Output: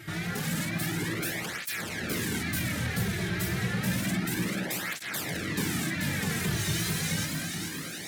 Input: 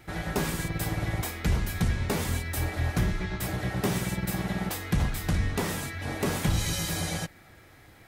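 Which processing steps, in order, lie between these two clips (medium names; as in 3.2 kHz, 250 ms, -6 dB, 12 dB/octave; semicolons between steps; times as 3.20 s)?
high-pass 140 Hz 12 dB/octave; high-order bell 710 Hz -10 dB; in parallel at +3 dB: compression, threshold -41 dBFS, peak gain reduction 16.5 dB; on the sum: overload inside the chain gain 32.5 dB; wow and flutter 100 cents; on a send: echo whose repeats swap between lows and highs 217 ms, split 1.9 kHz, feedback 83%, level -3 dB; on the sum: cancelling through-zero flanger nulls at 0.3 Hz, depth 4.1 ms; trim +4.5 dB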